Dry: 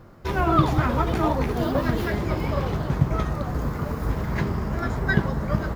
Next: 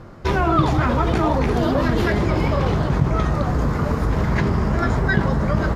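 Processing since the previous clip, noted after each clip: LPF 8500 Hz 12 dB/oct; in parallel at +0.5 dB: negative-ratio compressor -26 dBFS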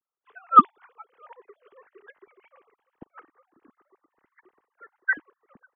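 sine-wave speech; bell 610 Hz -10 dB 0.79 oct; upward expander 2.5:1, over -33 dBFS; gain -3 dB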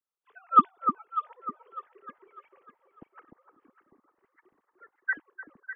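echo with dull and thin repeats by turns 0.3 s, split 1200 Hz, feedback 56%, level -5 dB; gain -5 dB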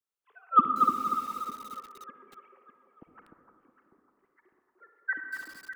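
on a send at -6 dB: reverb RT60 1.4 s, pre-delay 43 ms; on the sum: lo-fi delay 0.24 s, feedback 35%, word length 7-bit, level -5 dB; gain -2.5 dB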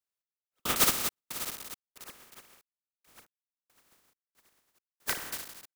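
spectral contrast lowered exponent 0.16; step gate "x..xx.xx.xxx.." 69 bpm -60 dB

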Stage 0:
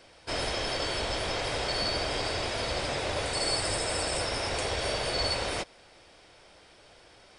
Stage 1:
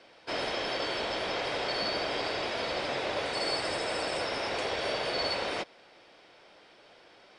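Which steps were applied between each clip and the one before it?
three-band isolator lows -17 dB, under 160 Hz, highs -16 dB, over 5200 Hz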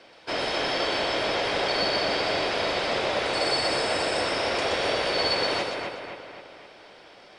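split-band echo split 2900 Hz, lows 0.259 s, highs 0.123 s, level -4 dB; gain +4.5 dB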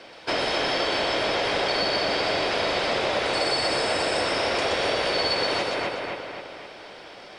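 compressor 2.5:1, threshold -30 dBFS, peak gain reduction 6.5 dB; gain +6.5 dB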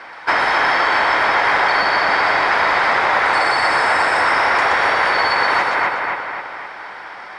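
band shelf 1300 Hz +15 dB

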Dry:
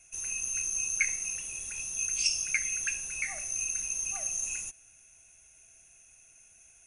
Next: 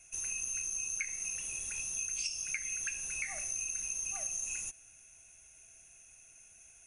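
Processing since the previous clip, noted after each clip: compressor 6:1, threshold -34 dBFS, peak gain reduction 11.5 dB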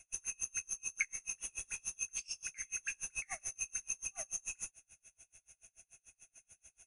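dynamic EQ 1300 Hz, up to +5 dB, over -55 dBFS, Q 1; dB-linear tremolo 6.9 Hz, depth 34 dB; gain +1.5 dB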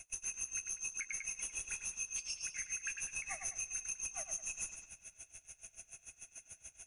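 analogue delay 98 ms, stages 4096, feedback 50%, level -13 dB; compressor 2.5:1, threshold -42 dBFS, peak gain reduction 9 dB; limiter -38 dBFS, peak gain reduction 11 dB; gain +8 dB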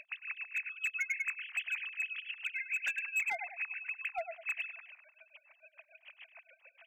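sine-wave speech; in parallel at -3 dB: wavefolder -34 dBFS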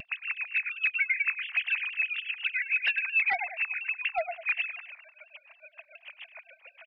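downsampling 11025 Hz; shaped vibrato saw down 4.2 Hz, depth 100 cents; gain +8 dB

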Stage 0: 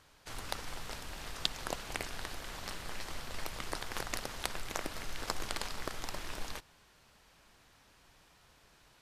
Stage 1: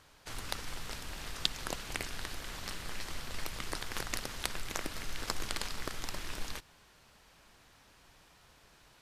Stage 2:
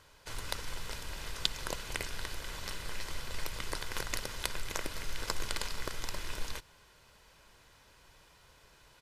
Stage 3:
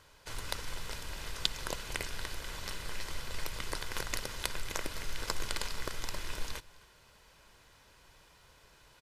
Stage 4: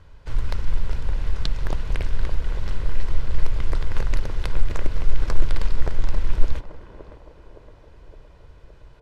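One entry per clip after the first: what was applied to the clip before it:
dynamic EQ 710 Hz, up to -5 dB, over -52 dBFS, Q 0.88; gain +2 dB
comb 2 ms, depth 34%
echo 0.26 s -23.5 dB
RIAA curve playback; narrowing echo 0.565 s, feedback 66%, band-pass 490 Hz, level -5.5 dB; Doppler distortion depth 0.36 ms; gain +3 dB

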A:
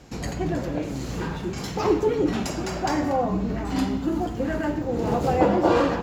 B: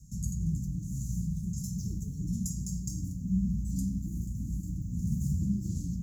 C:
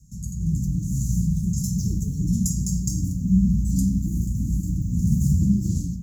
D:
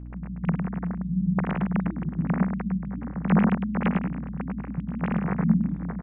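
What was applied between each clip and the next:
Chebyshev band-stop 190–6400 Hz, order 4
AGC gain up to 10.5 dB
sine-wave speech; hum 60 Hz, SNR 11 dB; echo 0.105 s -6 dB; gain -5 dB

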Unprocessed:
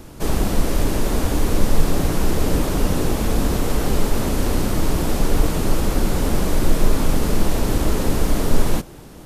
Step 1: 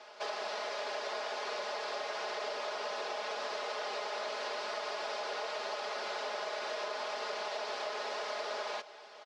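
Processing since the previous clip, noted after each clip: elliptic band-pass 580–5000 Hz, stop band 80 dB; comb 4.8 ms, depth 96%; compressor, threshold -29 dBFS, peak gain reduction 6 dB; gain -5.5 dB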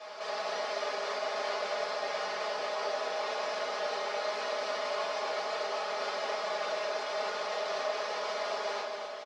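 limiter -35.5 dBFS, peak gain reduction 9.5 dB; echo 0.241 s -6.5 dB; shoebox room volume 630 m³, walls furnished, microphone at 5.9 m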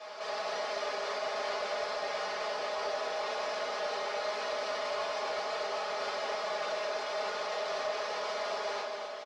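soft clip -24 dBFS, distortion -24 dB

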